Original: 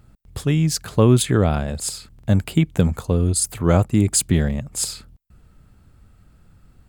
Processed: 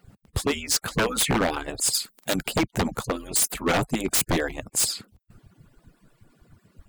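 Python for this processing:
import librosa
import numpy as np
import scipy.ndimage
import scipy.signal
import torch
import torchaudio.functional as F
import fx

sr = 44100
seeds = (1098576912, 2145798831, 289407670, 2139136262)

y = fx.hpss_only(x, sr, part='percussive')
y = 10.0 ** (-20.0 / 20.0) * (np.abs((y / 10.0 ** (-20.0 / 20.0) + 3.0) % 4.0 - 2.0) - 1.0)
y = fx.riaa(y, sr, side='recording', at=(1.93, 2.34), fade=0.02)
y = y * 10.0 ** (4.5 / 20.0)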